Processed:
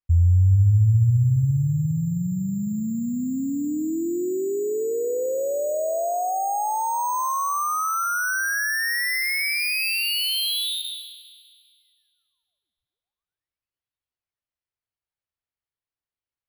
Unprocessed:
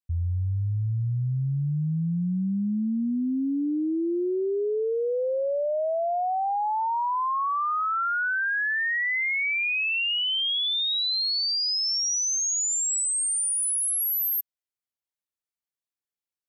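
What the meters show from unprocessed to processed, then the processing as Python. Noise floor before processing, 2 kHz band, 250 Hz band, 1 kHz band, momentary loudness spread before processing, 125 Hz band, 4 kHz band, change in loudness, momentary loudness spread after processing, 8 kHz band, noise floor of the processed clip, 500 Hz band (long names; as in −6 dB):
below −85 dBFS, +0.5 dB, +0.5 dB, +1.5 dB, 5 LU, +8.0 dB, −2.5 dB, +2.0 dB, 9 LU, −7.0 dB, below −85 dBFS, +1.0 dB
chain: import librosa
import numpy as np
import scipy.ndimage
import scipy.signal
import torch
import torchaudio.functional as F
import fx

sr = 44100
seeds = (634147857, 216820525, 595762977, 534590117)

y = np.repeat(scipy.signal.resample_poly(x, 1, 6), 6)[:len(x)]
y = fx.low_shelf_res(y, sr, hz=140.0, db=7.0, q=1.5)
y = fx.echo_split(y, sr, split_hz=520.0, low_ms=409, high_ms=201, feedback_pct=52, wet_db=-14)
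y = y * 10.0 ** (1.5 / 20.0)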